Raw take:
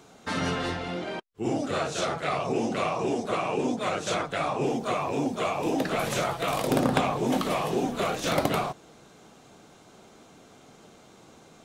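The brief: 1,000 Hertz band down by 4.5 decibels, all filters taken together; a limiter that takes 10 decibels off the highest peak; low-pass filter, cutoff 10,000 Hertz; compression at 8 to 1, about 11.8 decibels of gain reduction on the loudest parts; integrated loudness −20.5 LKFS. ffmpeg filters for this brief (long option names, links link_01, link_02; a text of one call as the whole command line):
ffmpeg -i in.wav -af "lowpass=10000,equalizer=frequency=1000:width_type=o:gain=-6.5,acompressor=threshold=-33dB:ratio=8,volume=19.5dB,alimiter=limit=-11dB:level=0:latency=1" out.wav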